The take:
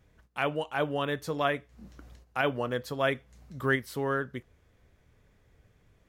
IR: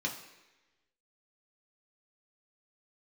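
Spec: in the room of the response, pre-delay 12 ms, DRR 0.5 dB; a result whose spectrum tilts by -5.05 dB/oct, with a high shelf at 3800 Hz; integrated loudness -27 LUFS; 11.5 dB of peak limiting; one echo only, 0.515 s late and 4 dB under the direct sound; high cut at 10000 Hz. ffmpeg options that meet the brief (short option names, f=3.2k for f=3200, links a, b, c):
-filter_complex "[0:a]lowpass=10k,highshelf=f=3.8k:g=-3.5,alimiter=level_in=1dB:limit=-24dB:level=0:latency=1,volume=-1dB,aecho=1:1:515:0.631,asplit=2[a][b];[1:a]atrim=start_sample=2205,adelay=12[c];[b][c]afir=irnorm=-1:irlink=0,volume=-4.5dB[d];[a][d]amix=inputs=2:normalize=0,volume=6dB"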